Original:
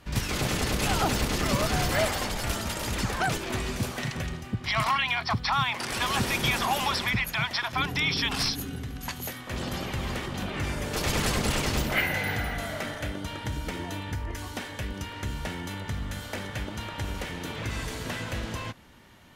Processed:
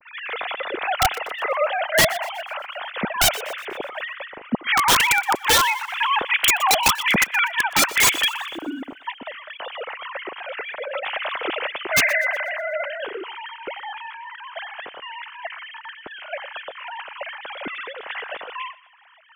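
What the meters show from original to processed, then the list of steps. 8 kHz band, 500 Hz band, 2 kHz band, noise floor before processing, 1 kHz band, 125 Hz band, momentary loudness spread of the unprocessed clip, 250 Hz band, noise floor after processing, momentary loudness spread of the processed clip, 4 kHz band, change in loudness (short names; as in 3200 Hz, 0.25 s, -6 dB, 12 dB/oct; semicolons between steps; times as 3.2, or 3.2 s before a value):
+9.0 dB, +5.5 dB, +8.0 dB, -41 dBFS, +7.0 dB, -10.5 dB, 10 LU, -2.0 dB, -45 dBFS, 18 LU, +6.0 dB, +7.5 dB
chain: sine-wave speech; wrapped overs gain 16 dB; thinning echo 0.122 s, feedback 47%, high-pass 1100 Hz, level -18 dB; gain +6 dB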